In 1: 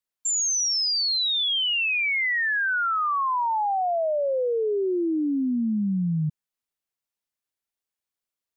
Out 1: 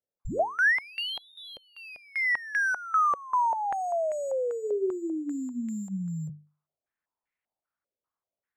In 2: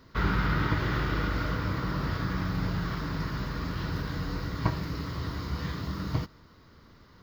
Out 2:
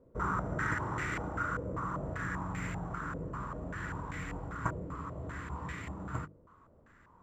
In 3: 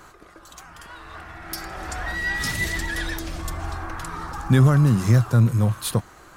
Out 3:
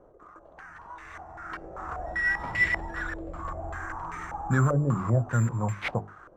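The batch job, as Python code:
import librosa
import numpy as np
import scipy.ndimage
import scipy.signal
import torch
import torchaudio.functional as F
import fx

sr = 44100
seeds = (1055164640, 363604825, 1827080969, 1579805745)

y = (np.kron(x[::6], np.eye(6)[0]) * 6)[:len(x)]
y = fx.hum_notches(y, sr, base_hz=50, count=9)
y = fx.filter_held_lowpass(y, sr, hz=5.1, low_hz=530.0, high_hz=2100.0)
y = y * librosa.db_to_amplitude(-8.0)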